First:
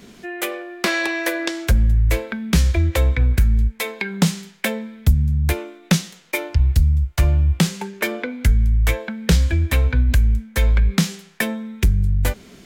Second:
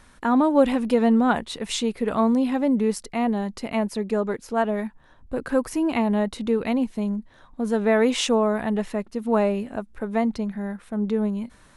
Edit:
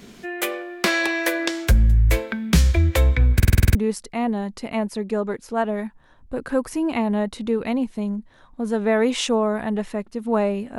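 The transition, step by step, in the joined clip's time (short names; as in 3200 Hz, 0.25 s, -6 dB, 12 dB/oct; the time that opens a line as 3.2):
first
3.35 stutter in place 0.05 s, 8 plays
3.75 switch to second from 2.75 s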